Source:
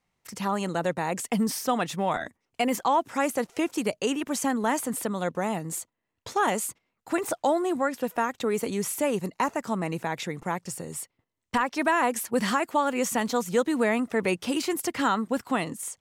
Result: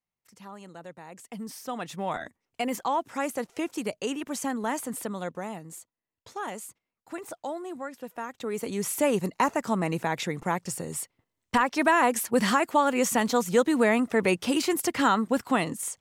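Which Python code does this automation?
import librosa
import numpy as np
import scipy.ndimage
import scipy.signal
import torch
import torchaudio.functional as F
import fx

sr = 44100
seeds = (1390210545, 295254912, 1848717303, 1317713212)

y = fx.gain(x, sr, db=fx.line((1.11, -16.5), (2.1, -4.0), (5.15, -4.0), (5.74, -10.5), (8.14, -10.5), (9.03, 2.0)))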